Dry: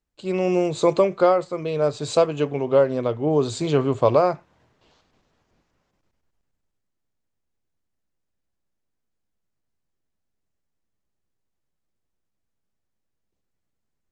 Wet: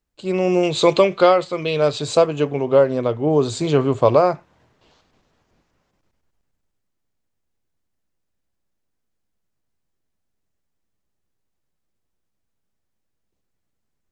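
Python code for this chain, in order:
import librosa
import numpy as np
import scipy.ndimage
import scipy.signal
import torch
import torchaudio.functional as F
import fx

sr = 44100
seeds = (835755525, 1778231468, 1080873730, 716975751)

y = fx.peak_eq(x, sr, hz=3200.0, db=11.5, octaves=1.3, at=(0.63, 2.02))
y = F.gain(torch.from_numpy(y), 3.0).numpy()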